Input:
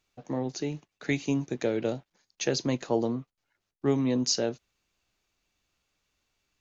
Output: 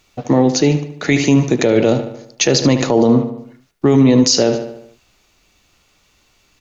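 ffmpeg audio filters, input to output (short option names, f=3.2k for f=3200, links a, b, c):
-filter_complex "[0:a]bandreject=f=1.6k:w=15,asplit=2[a][b];[b]adelay=74,lowpass=f=4.3k:p=1,volume=-12dB,asplit=2[c][d];[d]adelay=74,lowpass=f=4.3k:p=1,volume=0.53,asplit=2[e][f];[f]adelay=74,lowpass=f=4.3k:p=1,volume=0.53,asplit=2[g][h];[h]adelay=74,lowpass=f=4.3k:p=1,volume=0.53,asplit=2[i][j];[j]adelay=74,lowpass=f=4.3k:p=1,volume=0.53,asplit=2[k][l];[l]adelay=74,lowpass=f=4.3k:p=1,volume=0.53[m];[a][c][e][g][i][k][m]amix=inputs=7:normalize=0,alimiter=level_in=22.5dB:limit=-1dB:release=50:level=0:latency=1,volume=-2.5dB"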